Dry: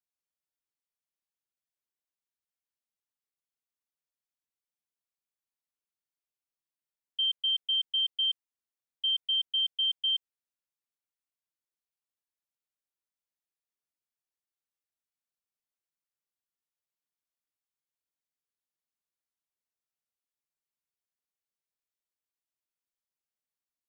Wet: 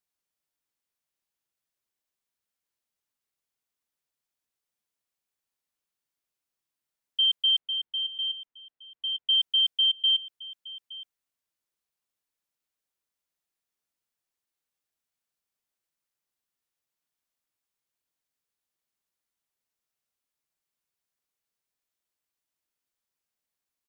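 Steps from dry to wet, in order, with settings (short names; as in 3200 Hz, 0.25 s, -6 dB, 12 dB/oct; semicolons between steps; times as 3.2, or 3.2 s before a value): 7.58–9.29 air absorption 380 m; echo 0.867 s -18.5 dB; gain +5.5 dB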